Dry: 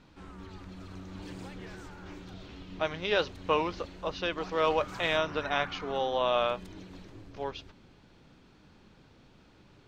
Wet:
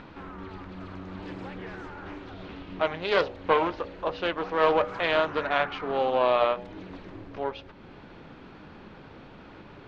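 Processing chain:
in parallel at +1 dB: upward compression, threshold −32 dBFS
on the sum: Bessel low-pass filter 2,000 Hz, order 2
low-shelf EQ 210 Hz −8.5 dB
hum removal 60.79 Hz, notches 15
highs frequency-modulated by the lows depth 0.27 ms

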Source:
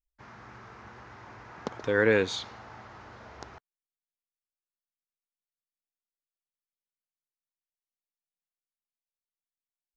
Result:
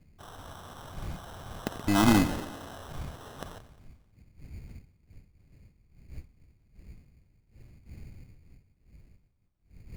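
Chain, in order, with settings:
band-splitting scrambler in four parts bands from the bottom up 4321
wind on the microphone 100 Hz −44 dBFS
high-shelf EQ 2,700 Hz +7 dB
delay with a high-pass on its return 88 ms, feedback 61%, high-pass 1,500 Hz, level −14 dB
sample-rate reduction 2,300 Hz, jitter 0%
level −3.5 dB

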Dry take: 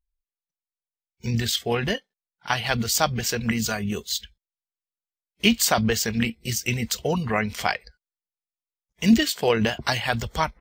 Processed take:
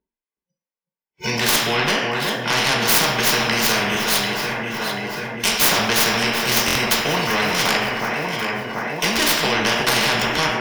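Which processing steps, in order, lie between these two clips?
stylus tracing distortion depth 0.22 ms
noise reduction from a noise print of the clip's start 24 dB
parametric band 1,300 Hz −8 dB 0.26 octaves
harmonic and percussive parts rebalanced percussive −6 dB
0:03.95–0:05.59: guitar amp tone stack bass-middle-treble 10-0-10
brickwall limiter −17.5 dBFS, peak gain reduction 9.5 dB
delay that swaps between a low-pass and a high-pass 369 ms, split 1,700 Hz, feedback 68%, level −10.5 dB
convolution reverb RT60 0.65 s, pre-delay 3 ms, DRR −2 dB
buffer that repeats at 0:06.66, samples 1,024, times 3
every bin compressed towards the loudest bin 4 to 1
level −3 dB

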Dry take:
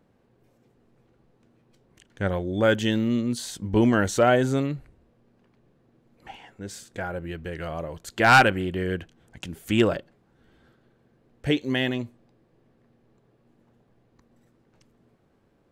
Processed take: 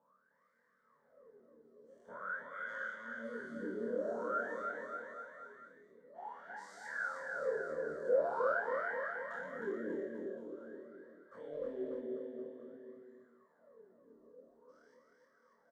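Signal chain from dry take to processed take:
every bin's largest magnitude spread in time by 240 ms
parametric band 1,700 Hz −6.5 dB 1.7 octaves
downward compressor 5 to 1, threshold −32 dBFS, peak gain reduction 19.5 dB
phaser with its sweep stopped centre 520 Hz, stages 8
flutter between parallel walls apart 4.5 metres, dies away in 0.45 s
LFO wah 0.48 Hz 340–2,000 Hz, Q 14
on a send: bouncing-ball delay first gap 310 ms, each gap 0.9×, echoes 5
0:11.53–0:12.02: on the sum: windowed peak hold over 3 samples
level +10.5 dB

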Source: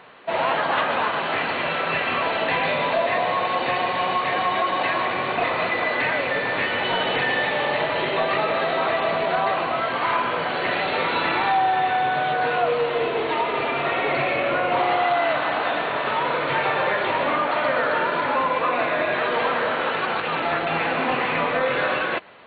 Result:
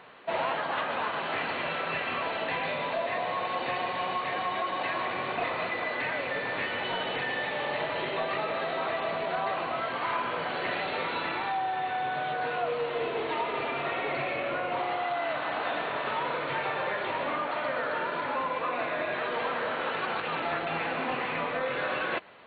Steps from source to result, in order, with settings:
speech leveller 0.5 s
level −8.5 dB

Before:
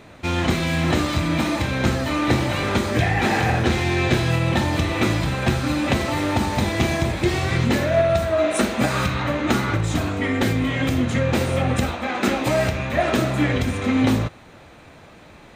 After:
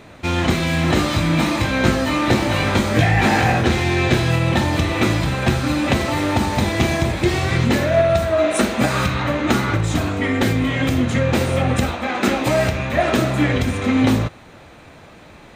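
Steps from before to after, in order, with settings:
0:00.94–0:03.61: double-tracking delay 19 ms −4.5 dB
level +2.5 dB

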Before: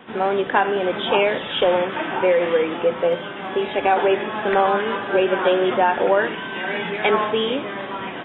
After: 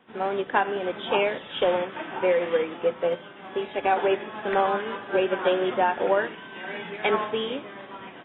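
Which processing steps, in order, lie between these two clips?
expander for the loud parts 1.5 to 1, over −36 dBFS
level −4 dB

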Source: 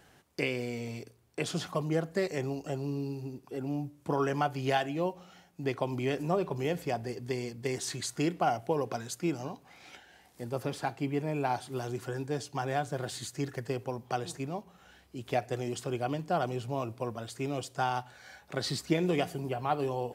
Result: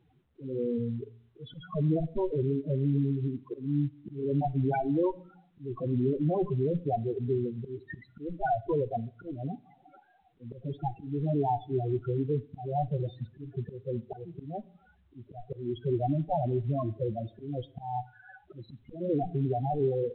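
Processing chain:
0:02.42–0:03.27: elliptic band-stop filter 650–2,200 Hz, stop band 40 dB
low-pass that shuts in the quiet parts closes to 1,100 Hz, open at −25 dBFS
harmonic generator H 3 −6 dB, 5 −39 dB, 6 −17 dB, 7 −23 dB, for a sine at −14 dBFS
in parallel at 0 dB: downward compressor 16 to 1, threshold −43 dBFS, peak gain reduction 17 dB
on the sum: leveller curve on the samples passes 2
spectral peaks only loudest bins 4
volume swells 259 ms
on a send at −19.5 dB: convolution reverb RT60 0.50 s, pre-delay 4 ms
on the sum: mu-law 64 kbit/s 8,000 Hz

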